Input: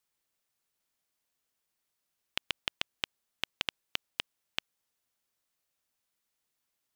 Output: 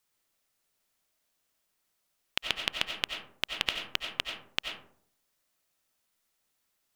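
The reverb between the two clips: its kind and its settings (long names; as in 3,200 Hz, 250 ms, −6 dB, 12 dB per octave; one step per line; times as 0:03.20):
comb and all-pass reverb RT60 0.61 s, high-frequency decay 0.4×, pre-delay 50 ms, DRR 3.5 dB
level +4 dB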